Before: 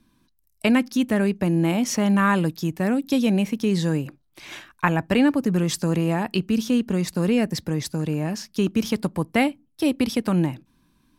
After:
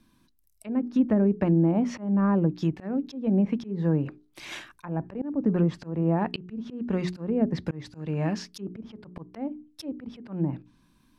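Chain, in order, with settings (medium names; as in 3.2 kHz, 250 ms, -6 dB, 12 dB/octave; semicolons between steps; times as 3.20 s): hum notches 60/120/180/240/300/360/420 Hz; low-pass that closes with the level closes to 620 Hz, closed at -17 dBFS; slow attack 262 ms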